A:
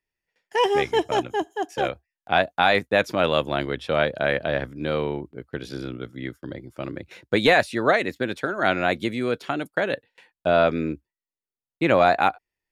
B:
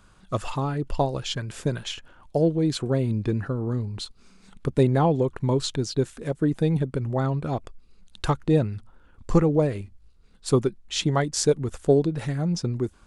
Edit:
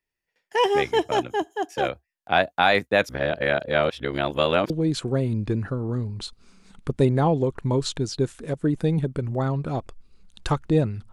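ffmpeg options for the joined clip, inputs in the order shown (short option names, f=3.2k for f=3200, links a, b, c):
-filter_complex "[0:a]apad=whole_dur=11.12,atrim=end=11.12,asplit=2[a][b];[a]atrim=end=3.092[c];[b]atrim=start=3.088:end=4.702,asetpts=PTS-STARTPTS,areverse[d];[1:a]atrim=start=2.478:end=8.9[e];[c][d]acrossfade=d=0.004:c1=hsin:c2=hsin[f];[f][e]acrossfade=d=0.004:c1=hsin:c2=hsin"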